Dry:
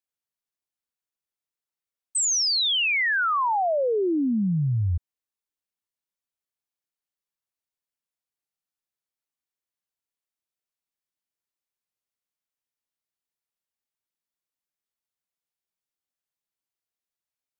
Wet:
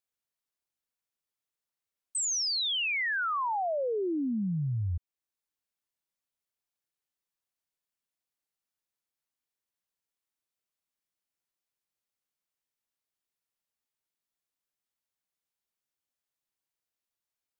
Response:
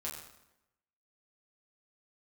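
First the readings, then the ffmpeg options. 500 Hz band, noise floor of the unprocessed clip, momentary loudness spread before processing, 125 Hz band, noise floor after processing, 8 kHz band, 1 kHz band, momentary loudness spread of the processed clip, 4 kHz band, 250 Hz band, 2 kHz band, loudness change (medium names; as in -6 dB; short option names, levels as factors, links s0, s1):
-7.0 dB, under -85 dBFS, 7 LU, -7.0 dB, under -85 dBFS, -7.0 dB, -7.0 dB, 7 LU, -7.0 dB, -7.0 dB, -7.0 dB, -7.0 dB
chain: -af "alimiter=level_in=1.41:limit=0.0631:level=0:latency=1:release=433,volume=0.708"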